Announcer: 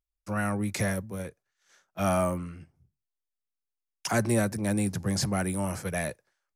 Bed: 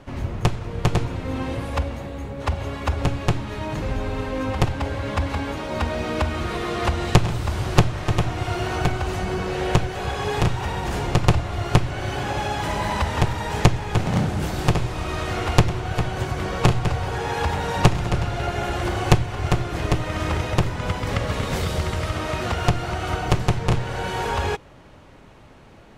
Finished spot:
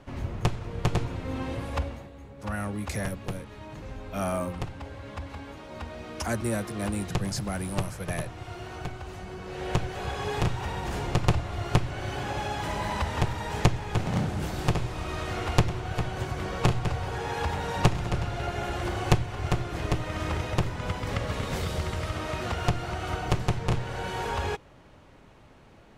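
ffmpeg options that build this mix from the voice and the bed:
ffmpeg -i stem1.wav -i stem2.wav -filter_complex "[0:a]adelay=2150,volume=-4dB[link_01];[1:a]volume=2.5dB,afade=type=out:start_time=1.83:duration=0.27:silence=0.375837,afade=type=in:start_time=9.41:duration=0.5:silence=0.398107[link_02];[link_01][link_02]amix=inputs=2:normalize=0" out.wav

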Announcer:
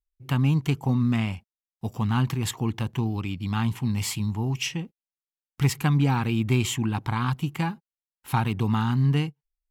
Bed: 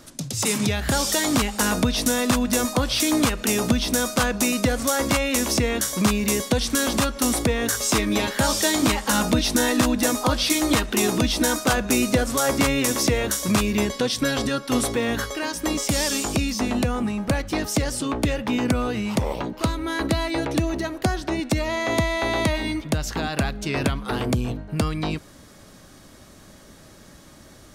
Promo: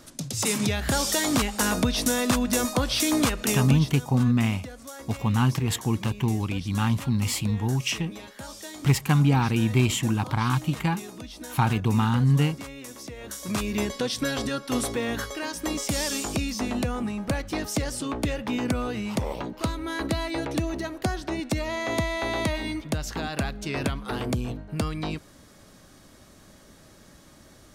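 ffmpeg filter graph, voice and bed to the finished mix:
ffmpeg -i stem1.wav -i stem2.wav -filter_complex "[0:a]adelay=3250,volume=1.5dB[link_01];[1:a]volume=12dB,afade=type=out:start_time=3.47:duration=0.51:silence=0.149624,afade=type=in:start_time=13.16:duration=0.65:silence=0.188365[link_02];[link_01][link_02]amix=inputs=2:normalize=0" out.wav

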